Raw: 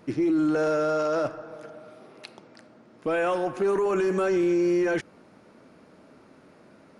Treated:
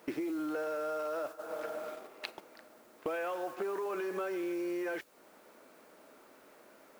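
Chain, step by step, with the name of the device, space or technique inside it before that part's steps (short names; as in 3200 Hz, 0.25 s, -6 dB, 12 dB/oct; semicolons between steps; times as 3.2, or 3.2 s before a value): baby monitor (BPF 420–4000 Hz; compressor 10:1, threshold -41 dBFS, peak gain reduction 17.5 dB; white noise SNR 21 dB; gate -49 dBFS, range -9 dB); gain +7 dB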